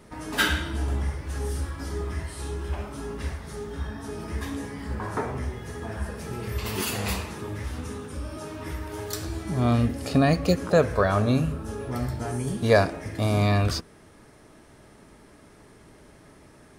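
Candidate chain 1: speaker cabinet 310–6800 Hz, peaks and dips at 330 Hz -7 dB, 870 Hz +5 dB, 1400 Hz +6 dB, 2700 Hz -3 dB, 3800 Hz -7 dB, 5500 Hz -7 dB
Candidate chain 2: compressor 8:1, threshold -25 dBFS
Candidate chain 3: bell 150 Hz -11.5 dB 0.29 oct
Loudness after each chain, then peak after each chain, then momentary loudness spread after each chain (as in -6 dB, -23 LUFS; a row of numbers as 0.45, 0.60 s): -30.0, -32.5, -28.5 LUFS; -6.0, -14.0, -6.5 dBFS; 17, 7, 13 LU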